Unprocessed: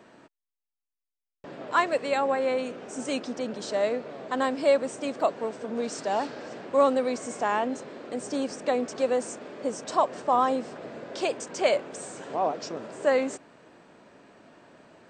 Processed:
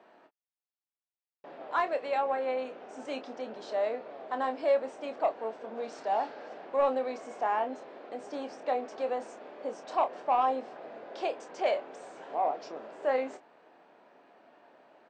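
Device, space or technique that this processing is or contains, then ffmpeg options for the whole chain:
intercom: -filter_complex "[0:a]highpass=340,lowpass=3800,lowshelf=f=82:g=11,equalizer=f=770:t=o:w=0.58:g=7,asoftclip=type=tanh:threshold=0.316,asplit=2[s0][s1];[s1]adelay=27,volume=0.376[s2];[s0][s2]amix=inputs=2:normalize=0,volume=0.447"

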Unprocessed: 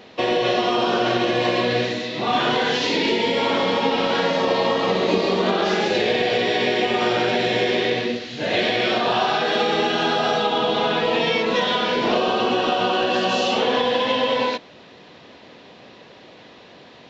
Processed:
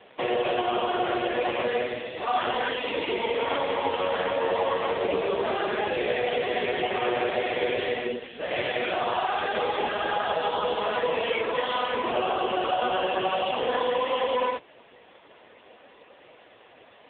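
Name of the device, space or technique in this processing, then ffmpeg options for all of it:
telephone: -af "highpass=390,lowpass=3500,asoftclip=type=tanh:threshold=0.266" -ar 8000 -c:a libopencore_amrnb -b:a 5150

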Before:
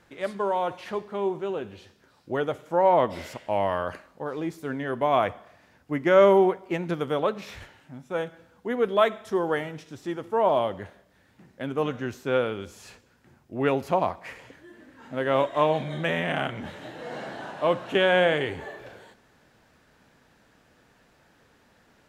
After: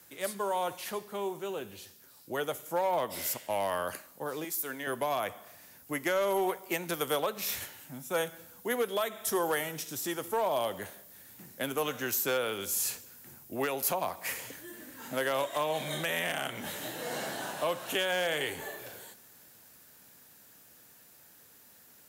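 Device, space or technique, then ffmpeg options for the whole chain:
FM broadcast chain: -filter_complex "[0:a]asettb=1/sr,asplit=3[s0][s1][s2];[s0]atrim=end=4.444[s3];[s1]atrim=start=4.44:end=4.87,asetpts=PTS-STARTPTS,afade=t=in:d=0.004:c=qsin,afade=t=out:st=0.426:d=0.004:c=qsin,highpass=f=660:p=1[s4];[s2]atrim=start=4.866[s5];[s3][s4]acrossfade=d=0.004:c1=hsin:c2=qsin[s6];[s6][s5]acrossfade=d=0.004:c1=qsin:c2=hsin,highpass=78,dynaudnorm=f=350:g=31:m=3.76,acrossover=split=130|420[s7][s8][s9];[s7]acompressor=threshold=0.00282:ratio=4[s10];[s8]acompressor=threshold=0.0158:ratio=4[s11];[s9]acompressor=threshold=0.1:ratio=4[s12];[s10][s11][s12]amix=inputs=3:normalize=0,aemphasis=mode=production:type=50fm,alimiter=limit=0.168:level=0:latency=1:release=318,asoftclip=type=hard:threshold=0.126,lowpass=f=15000:w=0.5412,lowpass=f=15000:w=1.3066,aemphasis=mode=production:type=50fm,volume=0.596"

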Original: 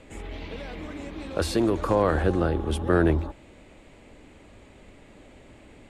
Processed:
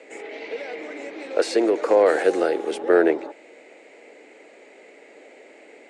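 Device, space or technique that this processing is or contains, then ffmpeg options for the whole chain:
phone speaker on a table: -filter_complex "[0:a]highpass=f=330:w=0.5412,highpass=f=330:w=1.3066,equalizer=f=460:t=q:w=4:g=7,equalizer=f=700:t=q:w=4:g=3,equalizer=f=1100:t=q:w=4:g=-8,equalizer=f=2100:t=q:w=4:g=7,equalizer=f=3400:t=q:w=4:g=-6,lowpass=f=8400:w=0.5412,lowpass=f=8400:w=1.3066,asettb=1/sr,asplit=3[s0][s1][s2];[s0]atrim=end=2.064[s3];[s1]atrim=start=2.06:end=2.71,asetpts=PTS-STARTPTS,afade=t=in:d=0.004:c=qsin,afade=t=out:st=0.646:d=0.004:c=qsin,aemphasis=mode=production:type=75fm[s4];[s2]atrim=start=2.706[s5];[s3][s4]acrossfade=d=0.004:c1=hsin:c2=qsin[s6];[s6][s5]acrossfade=d=0.004:c1=qsin:c2=hsin,volume=1.5"

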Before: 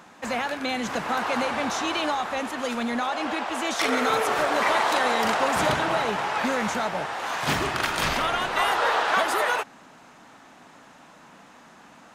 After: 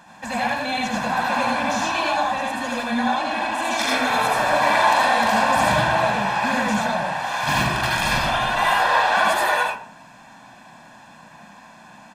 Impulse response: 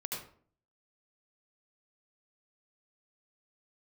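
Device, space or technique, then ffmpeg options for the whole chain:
microphone above a desk: -filter_complex "[0:a]aecho=1:1:1.2:0.74[s0];[1:a]atrim=start_sample=2205[s1];[s0][s1]afir=irnorm=-1:irlink=0,volume=1.19"

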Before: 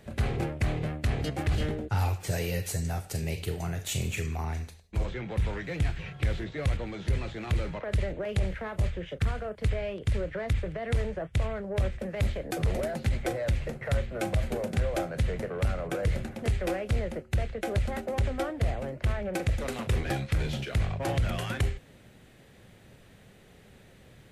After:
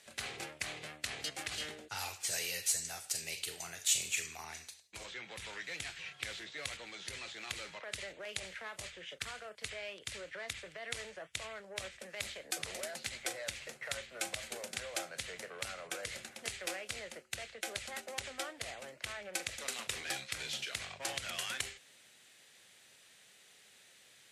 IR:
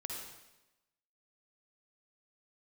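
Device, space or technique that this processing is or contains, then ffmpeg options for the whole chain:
piezo pickup straight into a mixer: -af "lowpass=7900,aderivative,volume=2.66"

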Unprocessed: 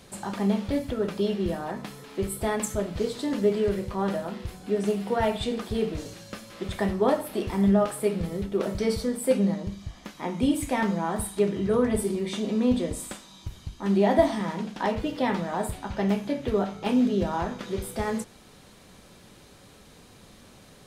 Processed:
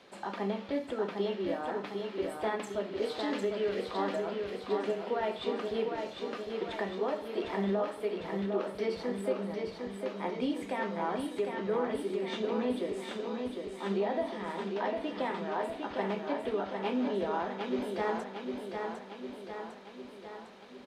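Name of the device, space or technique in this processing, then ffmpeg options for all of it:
DJ mixer with the lows and highs turned down: -filter_complex "[0:a]acrossover=split=250 4500:gain=0.0794 1 0.1[s0][s1][s2];[s0][s1][s2]amix=inputs=3:normalize=0,alimiter=limit=0.0944:level=0:latency=1:release=382,asettb=1/sr,asplit=3[s3][s4][s5];[s3]atrim=end=3.024[s6];[s4]atrim=start=3.02:end=3.91,asetpts=PTS-STARTPTS,afade=t=in:d=0.004:c=qsin,afade=t=out:st=0.886:d=0.004:c=qsin,equalizer=f=4000:t=o:w=2.9:g=6[s7];[s5]atrim=start=3.906[s8];[s6][s7]acrossfade=d=0.004:c1=hsin:c2=qsin[s9];[s9][s8]acrossfade=d=0.004:c1=qsin:c2=hsin,aecho=1:1:754|1508|2262|3016|3770|4524|5278|6032:0.562|0.332|0.196|0.115|0.0681|0.0402|0.0237|0.014,volume=0.75"

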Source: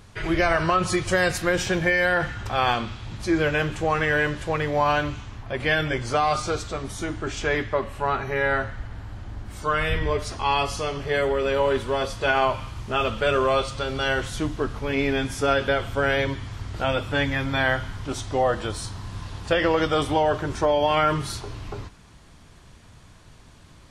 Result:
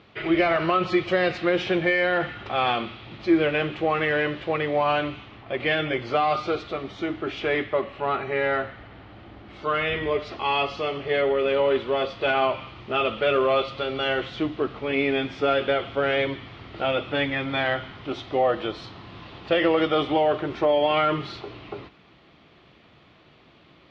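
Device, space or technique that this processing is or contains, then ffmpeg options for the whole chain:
overdrive pedal into a guitar cabinet: -filter_complex "[0:a]asplit=2[s0][s1];[s1]highpass=f=720:p=1,volume=2.82,asoftclip=type=tanh:threshold=0.398[s2];[s0][s2]amix=inputs=2:normalize=0,lowpass=f=3500:p=1,volume=0.501,highpass=92,equalizer=f=95:t=q:w=4:g=-7,equalizer=f=340:t=q:w=4:g=5,equalizer=f=960:t=q:w=4:g=-8,equalizer=f=1600:t=q:w=4:g=-9,lowpass=f=3700:w=0.5412,lowpass=f=3700:w=1.3066"

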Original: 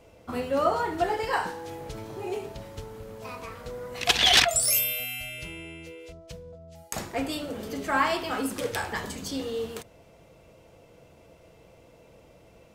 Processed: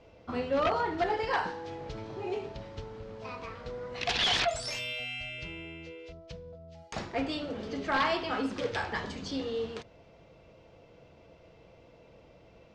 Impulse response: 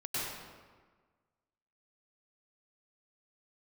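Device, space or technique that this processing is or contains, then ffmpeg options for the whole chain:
synthesiser wavefolder: -af "aeval=exprs='0.119*(abs(mod(val(0)/0.119+3,4)-2)-1)':c=same,lowpass=f=5300:w=0.5412,lowpass=f=5300:w=1.3066,volume=0.794"

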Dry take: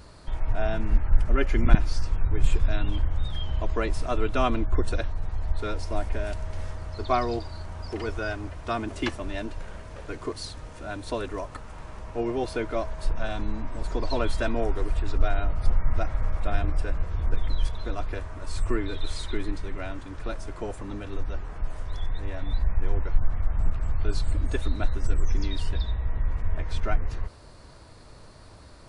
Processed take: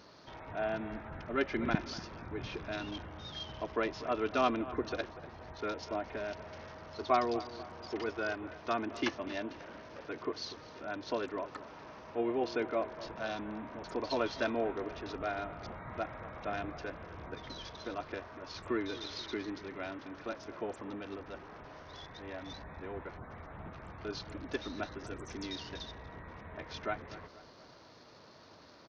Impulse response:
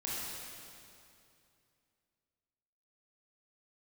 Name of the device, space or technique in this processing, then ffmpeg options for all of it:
Bluetooth headset: -filter_complex "[0:a]highpass=200,asplit=2[s0][s1];[s1]adelay=241,lowpass=f=3000:p=1,volume=0.168,asplit=2[s2][s3];[s3]adelay=241,lowpass=f=3000:p=1,volume=0.49,asplit=2[s4][s5];[s5]adelay=241,lowpass=f=3000:p=1,volume=0.49,asplit=2[s6][s7];[s7]adelay=241,lowpass=f=3000:p=1,volume=0.49[s8];[s0][s2][s4][s6][s8]amix=inputs=5:normalize=0,aresample=16000,aresample=44100,volume=0.631" -ar 48000 -c:a sbc -b:a 64k

